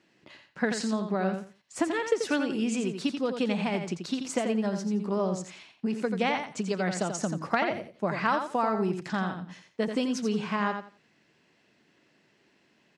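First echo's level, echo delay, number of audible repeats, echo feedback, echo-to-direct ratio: −7.0 dB, 86 ms, 3, 20%, −7.0 dB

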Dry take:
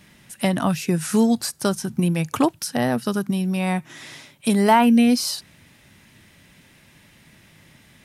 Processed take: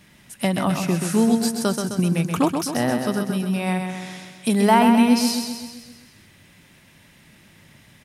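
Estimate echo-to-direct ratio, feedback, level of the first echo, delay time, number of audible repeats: −4.5 dB, 57%, −6.0 dB, 130 ms, 6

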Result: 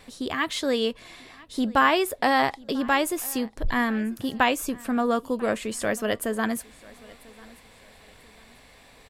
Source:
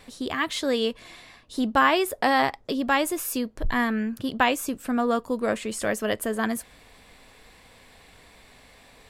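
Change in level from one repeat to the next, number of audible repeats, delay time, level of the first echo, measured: −9.5 dB, 2, 993 ms, −23.0 dB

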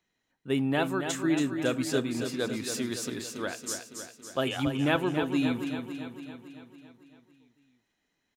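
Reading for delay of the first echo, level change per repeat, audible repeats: 279 ms, −4.5 dB, 7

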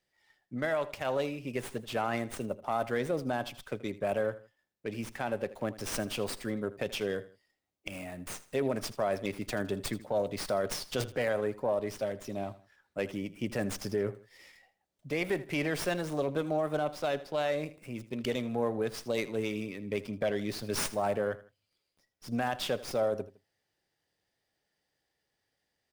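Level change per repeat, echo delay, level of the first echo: −9.0 dB, 80 ms, −17.0 dB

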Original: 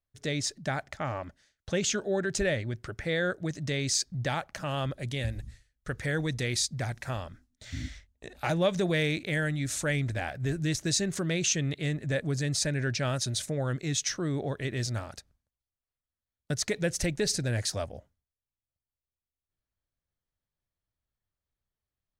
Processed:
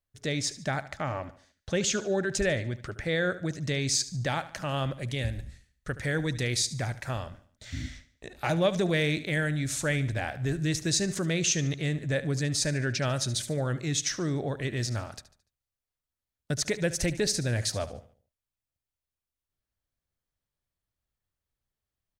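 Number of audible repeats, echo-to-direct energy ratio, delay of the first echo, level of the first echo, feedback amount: 3, −14.5 dB, 73 ms, −15.5 dB, 41%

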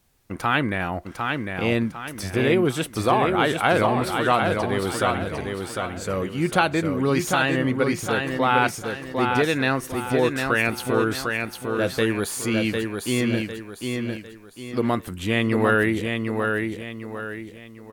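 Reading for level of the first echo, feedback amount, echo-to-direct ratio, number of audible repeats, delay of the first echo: −4.5 dB, 38%, −4.0 dB, 4, 752 ms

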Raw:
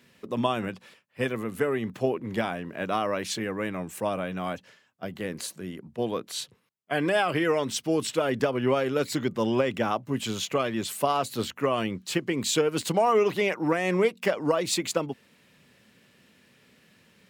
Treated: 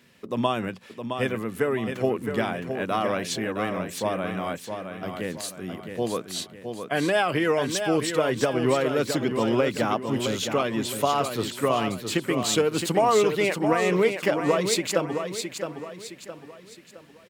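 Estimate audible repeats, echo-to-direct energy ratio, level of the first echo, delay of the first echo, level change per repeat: 4, −6.5 dB, −7.0 dB, 665 ms, −8.0 dB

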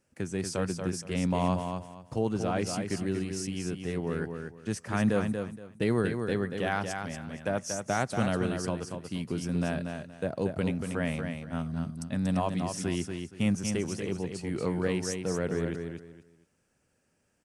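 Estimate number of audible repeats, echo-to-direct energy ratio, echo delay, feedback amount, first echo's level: 3, −5.5 dB, 235 ms, 24%, −6.0 dB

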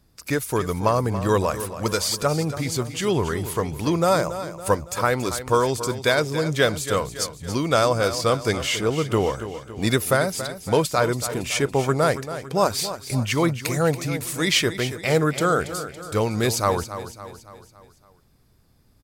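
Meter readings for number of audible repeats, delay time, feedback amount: 4, 280 ms, 50%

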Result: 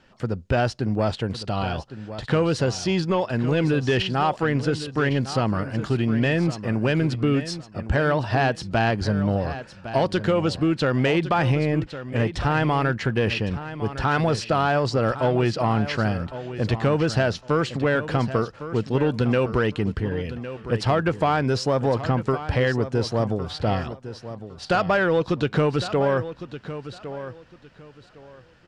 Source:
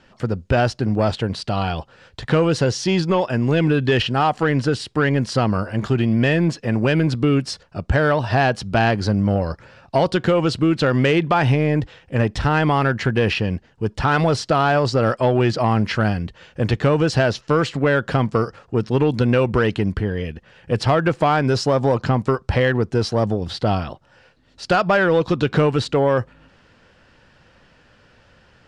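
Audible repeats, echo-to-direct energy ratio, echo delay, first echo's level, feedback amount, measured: 2, −12.5 dB, 1,108 ms, −12.5 dB, 22%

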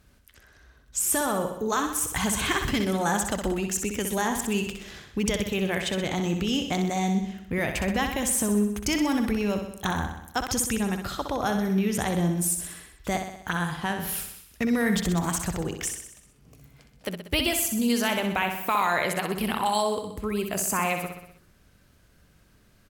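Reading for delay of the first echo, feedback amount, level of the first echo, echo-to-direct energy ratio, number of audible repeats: 63 ms, 58%, −7.0 dB, −5.0 dB, 6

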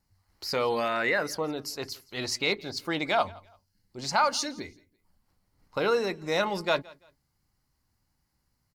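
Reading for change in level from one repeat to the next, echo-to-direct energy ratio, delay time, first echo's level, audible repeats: −11.0 dB, −23.0 dB, 169 ms, −23.5 dB, 2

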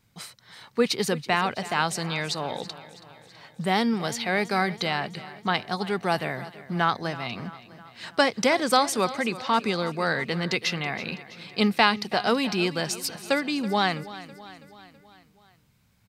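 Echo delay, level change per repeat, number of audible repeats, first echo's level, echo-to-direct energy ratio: 327 ms, −5.0 dB, 4, −16.5 dB, −15.0 dB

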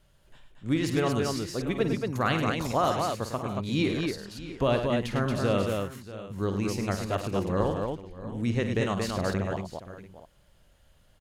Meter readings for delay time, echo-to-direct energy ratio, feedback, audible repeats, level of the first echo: 51 ms, −2.0 dB, repeats not evenly spaced, 5, −10.5 dB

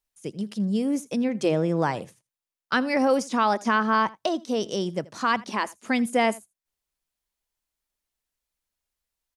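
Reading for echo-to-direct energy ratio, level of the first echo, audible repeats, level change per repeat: −22.0 dB, −22.0 dB, 1, repeats not evenly spaced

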